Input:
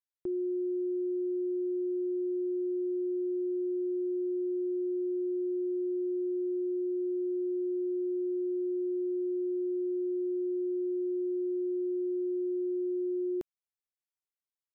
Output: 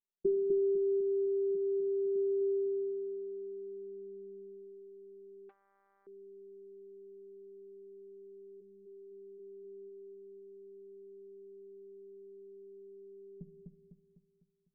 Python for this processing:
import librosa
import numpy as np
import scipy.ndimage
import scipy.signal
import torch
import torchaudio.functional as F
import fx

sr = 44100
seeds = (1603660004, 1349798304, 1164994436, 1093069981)

y = fx.peak_eq(x, sr, hz=180.0, db=-14.5, octaves=0.38, at=(1.55, 2.16))
y = fx.dereverb_blind(y, sr, rt60_s=1.3)
y = fx.robotise(y, sr, hz=197.0)
y = fx.doubler(y, sr, ms=17.0, db=-9.0)
y = fx.room_shoebox(y, sr, seeds[0], volume_m3=1900.0, walls='furnished', distance_m=0.59)
y = fx.filter_sweep_lowpass(y, sr, from_hz=340.0, to_hz=160.0, start_s=2.51, end_s=4.92, q=3.9)
y = fx.ellip_lowpass(y, sr, hz=500.0, order=4, stop_db=40, at=(8.6, 9.38), fade=0.02)
y = fx.echo_feedback(y, sr, ms=251, feedback_pct=47, wet_db=-3)
y = fx.transformer_sat(y, sr, knee_hz=1100.0, at=(5.49, 6.07))
y = y * 10.0 ** (2.0 / 20.0)